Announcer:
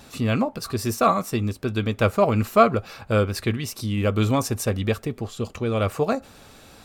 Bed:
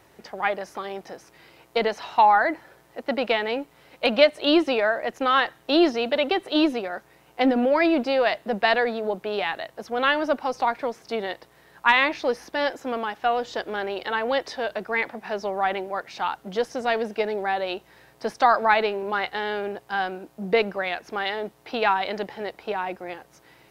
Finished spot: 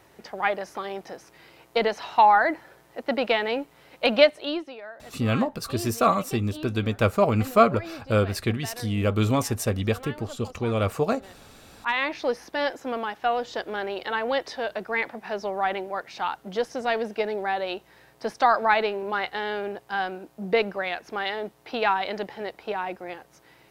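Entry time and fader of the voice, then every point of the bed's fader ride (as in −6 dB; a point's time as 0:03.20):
5.00 s, −1.5 dB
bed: 0:04.25 0 dB
0:04.75 −18.5 dB
0:11.41 −18.5 dB
0:12.21 −1.5 dB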